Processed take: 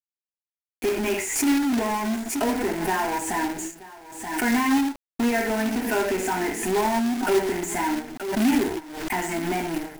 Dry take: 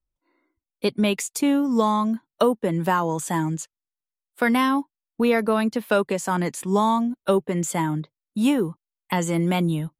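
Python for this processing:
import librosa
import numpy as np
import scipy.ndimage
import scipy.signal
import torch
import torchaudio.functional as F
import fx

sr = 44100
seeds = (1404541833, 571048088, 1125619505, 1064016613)

p1 = fx.rev_gated(x, sr, seeds[0], gate_ms=160, shape='falling', drr_db=-1.0)
p2 = fx.fuzz(p1, sr, gain_db=39.0, gate_db=-44.0)
p3 = p1 + (p2 * librosa.db_to_amplitude(-5.5))
p4 = fx.high_shelf(p3, sr, hz=8000.0, db=-9.5)
p5 = fx.fixed_phaser(p4, sr, hz=780.0, stages=8)
p6 = p5 + fx.echo_single(p5, sr, ms=929, db=-19.5, dry=0)
p7 = fx.quant_companded(p6, sr, bits=4)
p8 = fx.pre_swell(p7, sr, db_per_s=58.0)
y = p8 * librosa.db_to_amplitude(-7.5)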